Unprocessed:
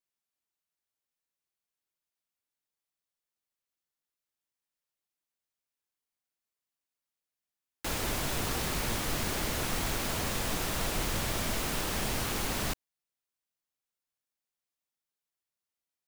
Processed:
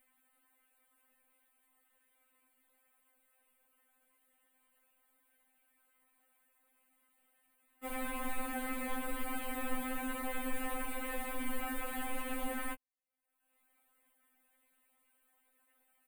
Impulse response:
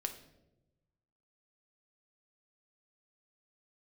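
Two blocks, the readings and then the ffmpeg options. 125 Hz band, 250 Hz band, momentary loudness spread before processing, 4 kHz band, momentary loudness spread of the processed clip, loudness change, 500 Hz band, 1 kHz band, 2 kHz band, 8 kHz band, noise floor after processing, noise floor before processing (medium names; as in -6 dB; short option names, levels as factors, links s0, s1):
under -20 dB, -3.0 dB, 2 LU, -15.5 dB, 2 LU, -8.0 dB, -6.5 dB, -4.0 dB, -5.5 dB, -12.0 dB, -76 dBFS, under -85 dBFS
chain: -af "acompressor=mode=upward:threshold=0.00631:ratio=2.5,firequalizer=gain_entry='entry(2100,0);entry(5600,-29);entry(8500,-4)':delay=0.05:min_phase=1,afftfilt=real='re*3.46*eq(mod(b,12),0)':imag='im*3.46*eq(mod(b,12),0)':win_size=2048:overlap=0.75,volume=0.794"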